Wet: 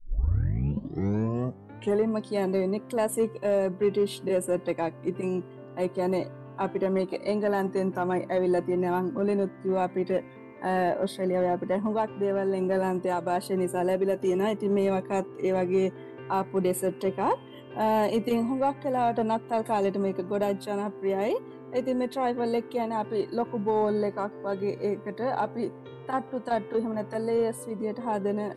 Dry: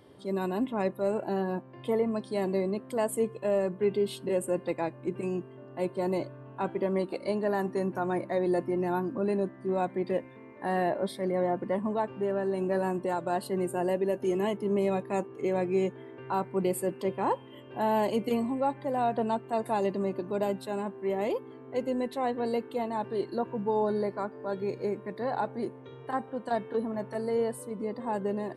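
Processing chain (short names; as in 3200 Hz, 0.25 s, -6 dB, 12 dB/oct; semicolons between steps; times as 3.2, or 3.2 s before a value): tape start at the beginning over 2.11 s; in parallel at -5 dB: overloaded stage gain 22.5 dB; on the sum: gain -1 dB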